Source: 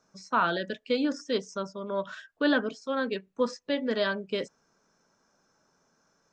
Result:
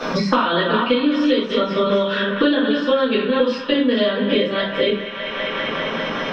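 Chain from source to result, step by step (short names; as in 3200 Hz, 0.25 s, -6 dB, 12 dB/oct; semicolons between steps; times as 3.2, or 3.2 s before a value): reverse delay 0.288 s, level -10.5 dB; resonant high shelf 4900 Hz -13 dB, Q 3; compressor, threshold -34 dBFS, peak gain reduction 14.5 dB; band-limited delay 0.199 s, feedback 73%, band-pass 1600 Hz, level -11 dB; shoebox room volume 32 m³, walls mixed, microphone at 1.8 m; three-band squash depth 100%; gain +6.5 dB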